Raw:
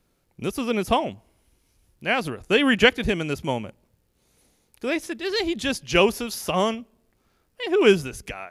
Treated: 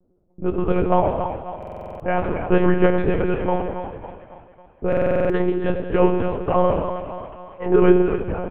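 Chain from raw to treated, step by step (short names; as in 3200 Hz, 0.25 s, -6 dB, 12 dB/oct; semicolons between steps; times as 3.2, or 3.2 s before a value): notches 60/120/180 Hz; low-pass opened by the level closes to 430 Hz, open at -17 dBFS; de-esser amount 85%; LPF 1200 Hz 12 dB/oct; bell 64 Hz -10 dB 1.9 oct; in parallel at -1 dB: compressor 6:1, threshold -32 dBFS, peak gain reduction 17 dB; on the sum: doubler 16 ms -6 dB; split-band echo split 510 Hz, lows 92 ms, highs 0.276 s, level -9 dB; on a send at -6 dB: reverb RT60 1.4 s, pre-delay 41 ms; on the sum: monotone LPC vocoder at 8 kHz 180 Hz; stuck buffer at 1.58/4.88, samples 2048, times 8; gain +3 dB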